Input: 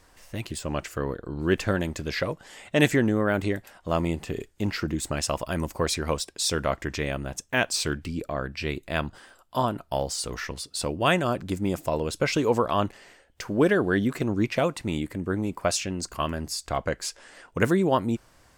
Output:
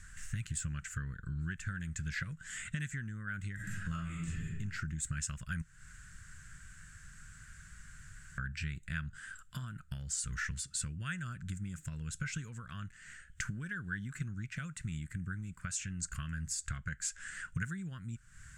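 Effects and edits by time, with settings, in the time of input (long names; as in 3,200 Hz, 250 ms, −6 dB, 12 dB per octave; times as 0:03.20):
0:03.55–0:04.54: thrown reverb, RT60 0.86 s, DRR −8 dB
0:05.62–0:08.38: fill with room tone
whole clip: low-shelf EQ 100 Hz +7 dB; downward compressor 8 to 1, threshold −37 dBFS; drawn EQ curve 110 Hz 0 dB, 160 Hz +3 dB, 310 Hz −20 dB, 600 Hz −28 dB, 890 Hz −27 dB, 1,500 Hz +6 dB, 2,200 Hz −3 dB, 5,000 Hz −9 dB, 7,400 Hz +7 dB, 13,000 Hz −13 dB; level +3.5 dB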